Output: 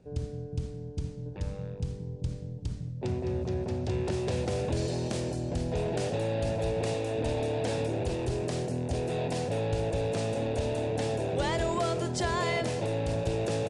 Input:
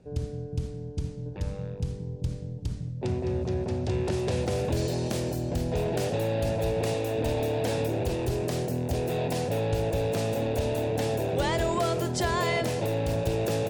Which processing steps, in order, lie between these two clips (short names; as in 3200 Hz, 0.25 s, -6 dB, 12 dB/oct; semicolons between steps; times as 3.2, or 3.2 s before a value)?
downsampling 22050 Hz; gain -2.5 dB